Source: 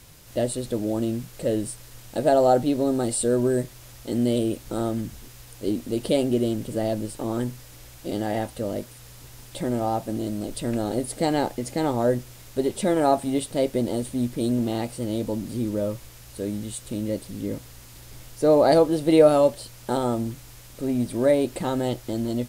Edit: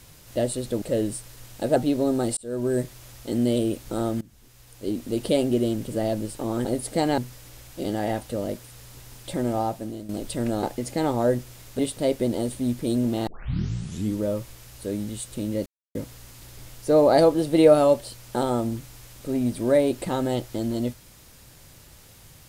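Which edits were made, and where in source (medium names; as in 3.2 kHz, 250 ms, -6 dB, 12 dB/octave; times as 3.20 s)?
0.82–1.36 s: delete
2.30–2.56 s: delete
3.17–3.59 s: fade in
5.01–5.95 s: fade in, from -21 dB
9.86–10.36 s: fade out linear, to -12 dB
10.90–11.43 s: move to 7.45 s
12.59–13.33 s: delete
14.81 s: tape start 0.90 s
17.20–17.49 s: mute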